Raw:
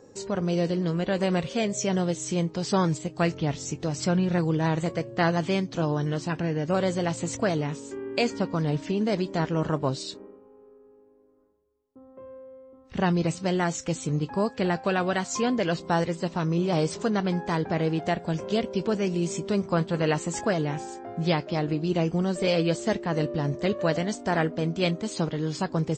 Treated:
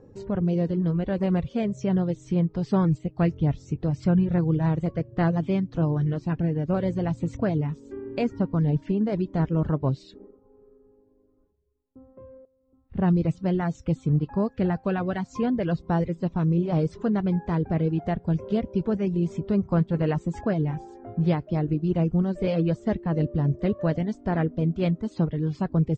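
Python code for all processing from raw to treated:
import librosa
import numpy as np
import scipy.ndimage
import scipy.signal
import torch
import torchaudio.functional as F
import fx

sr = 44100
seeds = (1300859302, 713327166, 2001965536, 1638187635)

y = fx.chain(x, sr, fx.lowpass(hz=2300.0, slope=6),
    fx.upward_expand(threshold_db=-39.0, expansion=1.5), at=(12.45, 13.08))
y = fx.riaa(y, sr, side='playback')
y = fx.dereverb_blind(y, sr, rt60_s=0.64)
y = fx.high_shelf(y, sr, hz=7500.0, db=-12.0)
y = F.gain(torch.from_numpy(y), -4.0).numpy()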